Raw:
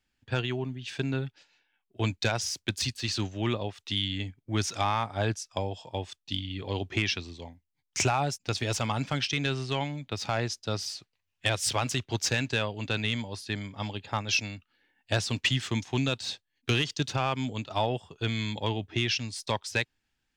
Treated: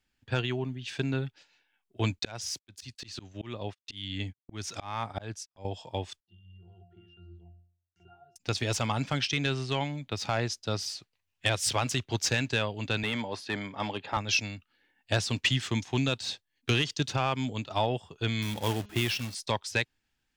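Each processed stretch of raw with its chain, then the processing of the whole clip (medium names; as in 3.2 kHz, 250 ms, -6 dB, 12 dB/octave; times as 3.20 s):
2.19–5.65 s: gate -44 dBFS, range -40 dB + slow attack 317 ms
6.20–8.36 s: block-companded coder 7-bit + compression 3:1, threshold -36 dBFS + pitch-class resonator F, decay 0.48 s
13.03–14.17 s: high-pass 100 Hz + overdrive pedal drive 16 dB, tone 1.3 kHz, clips at -16 dBFS
18.42–19.35 s: treble shelf 6.3 kHz -11.5 dB + companded quantiser 4-bit + de-hum 205.8 Hz, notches 33
whole clip: none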